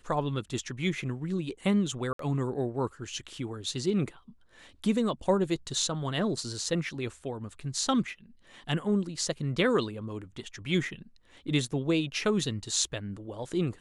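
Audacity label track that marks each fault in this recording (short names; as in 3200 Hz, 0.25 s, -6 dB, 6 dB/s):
2.130000	2.190000	gap 63 ms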